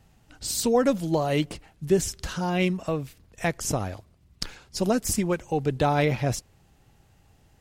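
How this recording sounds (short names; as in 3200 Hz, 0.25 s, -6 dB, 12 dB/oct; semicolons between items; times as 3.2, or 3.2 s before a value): noise floor -61 dBFS; spectral tilt -5.0 dB/oct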